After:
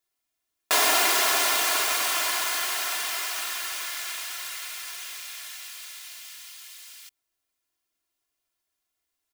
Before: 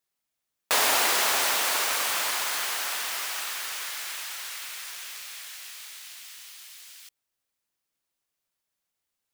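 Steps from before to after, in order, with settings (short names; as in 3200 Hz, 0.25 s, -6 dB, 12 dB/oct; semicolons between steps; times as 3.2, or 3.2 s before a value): comb 2.9 ms, depth 66%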